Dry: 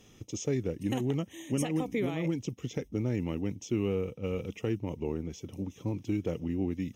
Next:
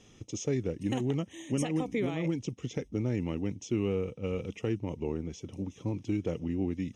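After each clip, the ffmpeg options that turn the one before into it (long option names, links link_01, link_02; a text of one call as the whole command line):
ffmpeg -i in.wav -af "lowpass=frequency=9200:width=0.5412,lowpass=frequency=9200:width=1.3066" out.wav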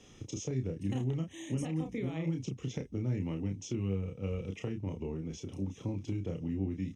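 ffmpeg -i in.wav -filter_complex "[0:a]acrossover=split=180[link_01][link_02];[link_02]acompressor=threshold=-40dB:ratio=4[link_03];[link_01][link_03]amix=inputs=2:normalize=0,asplit=2[link_04][link_05];[link_05]adelay=31,volume=-5dB[link_06];[link_04][link_06]amix=inputs=2:normalize=0" out.wav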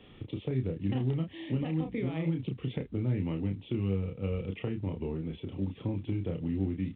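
ffmpeg -i in.wav -af "volume=3dB" -ar 8000 -c:a pcm_mulaw out.wav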